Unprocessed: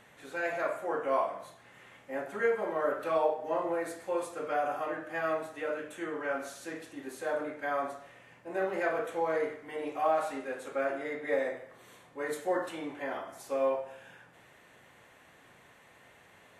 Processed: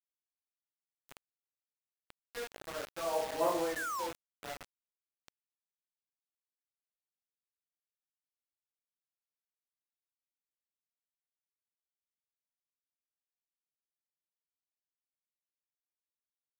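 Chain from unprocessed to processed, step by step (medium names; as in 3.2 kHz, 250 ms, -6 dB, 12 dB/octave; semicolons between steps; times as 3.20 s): Doppler pass-by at 3.47 s, 10 m/s, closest 1.6 m; painted sound fall, 3.76–4.07 s, 850–1800 Hz -39 dBFS; bit crusher 7-bit; trim +1 dB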